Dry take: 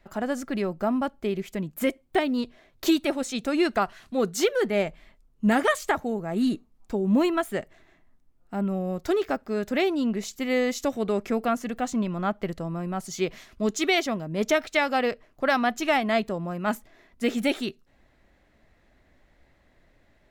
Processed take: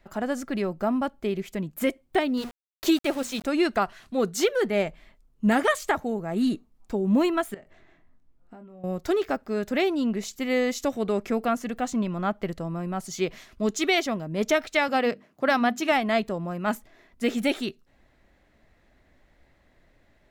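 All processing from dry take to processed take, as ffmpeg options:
ffmpeg -i in.wav -filter_complex "[0:a]asettb=1/sr,asplit=3[link_01][link_02][link_03];[link_01]atrim=end=2.374[link_04];[link_02]atrim=start=2.37:end=3.44,asetpts=PTS-STARTPTS,afade=type=in:duration=0.004:curve=qsin,afade=type=out:start_time=1.066:duration=0.004:curve=qsin,bandreject=frequency=60:width_type=h:width=6,bandreject=frequency=120:width_type=h:width=6,bandreject=frequency=180:width_type=h:width=6,bandreject=frequency=240:width_type=h:width=6,aeval=exprs='val(0)*gte(abs(val(0)),0.015)':channel_layout=same[link_05];[link_03]atrim=start=3.436[link_06];[link_04][link_05]acrossfade=duration=0.004:curve1=hsin:curve2=qsin[link_07];[link_07][link_06]acrossfade=duration=0.004:curve1=qsin:curve2=hsin,asettb=1/sr,asplit=3[link_08][link_09][link_10];[link_08]atrim=end=7.544[link_11];[link_09]atrim=start=7.54:end=8.84,asetpts=PTS-STARTPTS,afade=type=in:duration=0.004:curve=qsin,afade=type=out:start_time=1.296:duration=0.004:curve=qsin,highshelf=frequency=5900:gain=-11.5,acompressor=threshold=-42dB:ratio=8:attack=3.2:release=140:knee=1:detection=peak,asplit=2[link_12][link_13];[link_13]adelay=23,volume=-7dB[link_14];[link_12][link_14]amix=inputs=2:normalize=0,atrim=end_sample=57330[link_15];[link_10]atrim=start=8.836[link_16];[link_11][link_15]acrossfade=duration=0.004:curve1=hsin:curve2=qsin[link_17];[link_17][link_16]acrossfade=duration=0.004:curve1=qsin:curve2=hsin,asettb=1/sr,asplit=3[link_18][link_19][link_20];[link_18]atrim=end=14.884[link_21];[link_19]atrim=start=14.88:end=15.92,asetpts=PTS-STARTPTS,afade=type=in:duration=0.004:curve=qsin,afade=type=out:start_time=1.036:duration=0.004:curve=qsin,highpass=frequency=160:width_type=q:width=1.8,bandreject=frequency=50:width_type=h:width=6,bandreject=frequency=100:width_type=h:width=6,bandreject=frequency=150:width_type=h:width=6,bandreject=frequency=200:width_type=h:width=6,bandreject=frequency=250:width_type=h:width=6,bandreject=frequency=300:width_type=h:width=6,bandreject=frequency=350:width_type=h:width=6[link_22];[link_20]atrim=start=15.916[link_23];[link_21][link_22]acrossfade=duration=0.004:curve1=hsin:curve2=qsin[link_24];[link_24][link_23]acrossfade=duration=0.004:curve1=qsin:curve2=hsin" out.wav

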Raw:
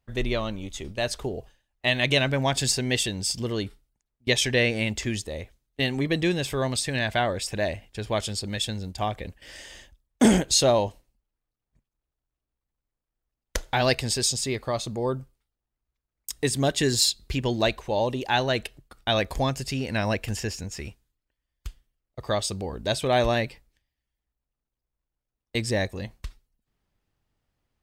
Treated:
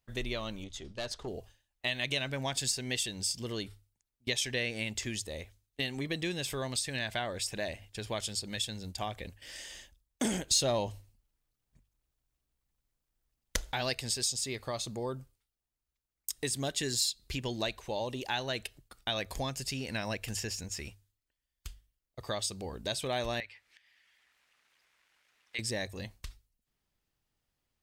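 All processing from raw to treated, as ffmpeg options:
ffmpeg -i in.wav -filter_complex "[0:a]asettb=1/sr,asplit=3[link_01][link_02][link_03];[link_01]atrim=end=0.644[link_04];[link_02]atrim=start=0.64:end=1.28,asetpts=PTS-STARTPTS,afade=type=in:duration=0.004:curve=qsin,afade=type=out:start_time=0.636:duration=0.004:curve=qsin,lowpass=5400,equalizer=frequency=2400:width_type=o:width=0.49:gain=-5.5,aeval=exprs='(tanh(12.6*val(0)+0.5)-tanh(0.5))/12.6':channel_layout=same[link_05];[link_03]atrim=start=1.276[link_06];[link_04][link_05]acrossfade=duration=0.004:curve1=hsin:curve2=qsin[link_07];[link_07][link_06]acrossfade=duration=0.004:curve1=qsin:curve2=hsin,asettb=1/sr,asplit=3[link_08][link_09][link_10];[link_08]atrim=end=10.514[link_11];[link_09]atrim=start=10.51:end=13.72,asetpts=PTS-STARTPTS,afade=type=in:duration=0.004:curve=qsin,afade=type=out:start_time=3.206:duration=0.004:curve=qsin,bass=frequency=250:gain=4,treble=frequency=4000:gain=-1,acontrast=61[link_12];[link_10]atrim=start=13.716[link_13];[link_11][link_12]acrossfade=duration=0.004:curve1=hsin:curve2=qsin[link_14];[link_14][link_13]acrossfade=duration=0.004:curve1=qsin:curve2=hsin,asettb=1/sr,asplit=3[link_15][link_16][link_17];[link_15]atrim=end=23.404[link_18];[link_16]atrim=start=23.4:end=25.59,asetpts=PTS-STARTPTS,afade=type=in:duration=0.004:curve=qsin,afade=type=out:start_time=2.186:duration=0.004:curve=qsin,bandpass=frequency=2000:width_type=q:width=1.6,acompressor=mode=upward:threshold=-40dB:ratio=2.5:attack=3.2:release=140:knee=2.83:detection=peak[link_19];[link_17]atrim=start=25.586[link_20];[link_18][link_19]acrossfade=duration=0.004:curve1=hsin:curve2=qsin[link_21];[link_21][link_20]acrossfade=duration=0.004:curve1=qsin:curve2=hsin,highshelf=frequency=2400:gain=8.5,bandreject=frequency=50:width_type=h:width=6,bandreject=frequency=100:width_type=h:width=6,acompressor=threshold=-27dB:ratio=2,volume=-7dB" out.wav

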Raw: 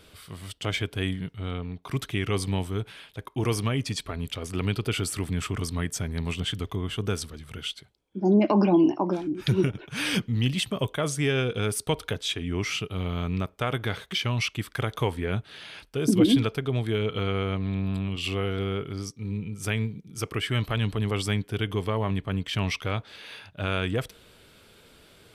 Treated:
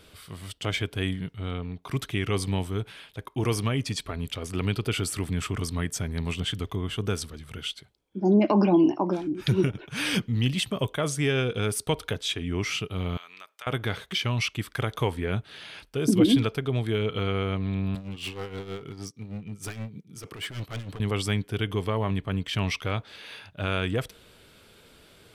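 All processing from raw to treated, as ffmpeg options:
ffmpeg -i in.wav -filter_complex "[0:a]asettb=1/sr,asplit=3[link_01][link_02][link_03];[link_01]atrim=end=13.174[link_04];[link_02]atrim=start=13.17:end=13.67,asetpts=PTS-STARTPTS,afade=type=in:duration=0.004:curve=qsin,afade=type=out:start_time=0.496:duration=0.004:curve=qsin,highpass=1300,acompressor=threshold=-44dB:ratio=2:attack=3.2:release=140:knee=1:detection=peak[link_05];[link_03]atrim=start=13.666[link_06];[link_04][link_05]acrossfade=duration=0.004:curve1=hsin:curve2=qsin[link_07];[link_07][link_06]acrossfade=duration=0.004:curve1=qsin:curve2=hsin,asettb=1/sr,asplit=3[link_08][link_09][link_10];[link_08]atrim=end=17.954[link_11];[link_09]atrim=start=17.95:end=21,asetpts=PTS-STARTPTS,afade=type=in:duration=0.004:curve=qsin,afade=type=out:start_time=3.046:duration=0.004:curve=qsin,highpass=90,volume=29dB,asoftclip=hard,volume=-29dB,tremolo=f=6.4:d=0.66[link_12];[link_10]atrim=start=20.996[link_13];[link_11][link_12]acrossfade=duration=0.004:curve1=hsin:curve2=qsin[link_14];[link_14][link_13]acrossfade=duration=0.004:curve1=qsin:curve2=hsin" out.wav

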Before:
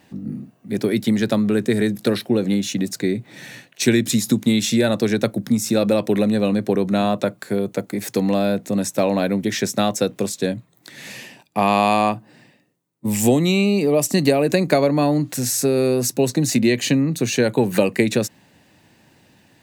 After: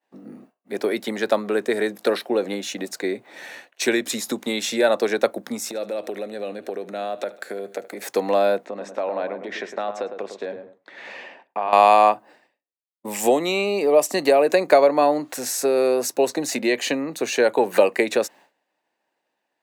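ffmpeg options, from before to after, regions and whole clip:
ffmpeg -i in.wav -filter_complex "[0:a]asettb=1/sr,asplit=3[link_01][link_02][link_03];[link_01]atrim=end=5.684[link_04];[link_02]atrim=start=5.68:end=8.02,asetpts=PTS-STARTPTS,afade=type=in:duration=0.004:curve=qsin,afade=type=out:start_time=2.336:duration=0.004:curve=qsin,equalizer=frequency=1000:width_type=o:width=0.37:gain=-13,acompressor=threshold=-23dB:ratio=10:attack=3.2:release=140:knee=1:detection=peak,aecho=1:1:75|150|225|300:0.133|0.0693|0.0361|0.0188,atrim=end_sample=103194[link_05];[link_03]atrim=start=8.016[link_06];[link_04][link_05]acrossfade=duration=0.004:curve1=hsin:curve2=qsin[link_07];[link_07][link_06]acrossfade=duration=0.004:curve1=qsin:curve2=hsin,asettb=1/sr,asplit=3[link_08][link_09][link_10];[link_08]atrim=end=8.654[link_11];[link_09]atrim=start=8.65:end=11.73,asetpts=PTS-STARTPTS,afade=type=in:duration=0.004:curve=qsin,afade=type=out:start_time=3.076:duration=0.004:curve=qsin,lowpass=3100,acompressor=threshold=-26dB:ratio=3:attack=3.2:release=140:knee=1:detection=peak,asplit=2[link_12][link_13];[link_13]adelay=106,lowpass=frequency=1300:poles=1,volume=-7dB,asplit=2[link_14][link_15];[link_15]adelay=106,lowpass=frequency=1300:poles=1,volume=0.38,asplit=2[link_16][link_17];[link_17]adelay=106,lowpass=frequency=1300:poles=1,volume=0.38,asplit=2[link_18][link_19];[link_19]adelay=106,lowpass=frequency=1300:poles=1,volume=0.38[link_20];[link_12][link_14][link_16][link_18][link_20]amix=inputs=5:normalize=0,atrim=end_sample=135828[link_21];[link_10]atrim=start=11.726[link_22];[link_11][link_21]acrossfade=duration=0.004:curve1=hsin:curve2=qsin[link_23];[link_23][link_22]acrossfade=duration=0.004:curve1=qsin:curve2=hsin,highpass=430,agate=range=-33dB:threshold=-44dB:ratio=3:detection=peak,equalizer=frequency=760:width=0.42:gain=10.5,volume=-5dB" out.wav

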